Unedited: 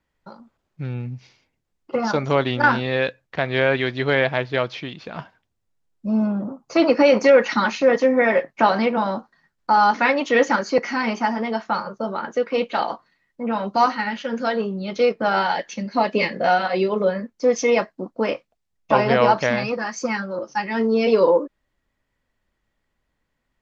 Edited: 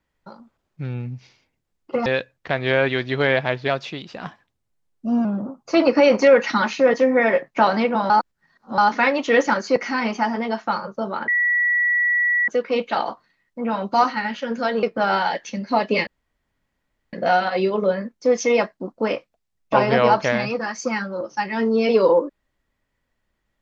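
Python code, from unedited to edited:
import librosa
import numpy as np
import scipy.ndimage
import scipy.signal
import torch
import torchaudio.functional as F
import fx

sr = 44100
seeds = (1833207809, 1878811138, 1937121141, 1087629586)

y = fx.edit(x, sr, fx.cut(start_s=2.06, length_s=0.88),
    fx.speed_span(start_s=4.56, length_s=1.71, speed=1.09),
    fx.reverse_span(start_s=9.12, length_s=0.68),
    fx.insert_tone(at_s=12.3, length_s=1.2, hz=1940.0, db=-16.0),
    fx.cut(start_s=14.65, length_s=0.42),
    fx.insert_room_tone(at_s=16.31, length_s=1.06), tone=tone)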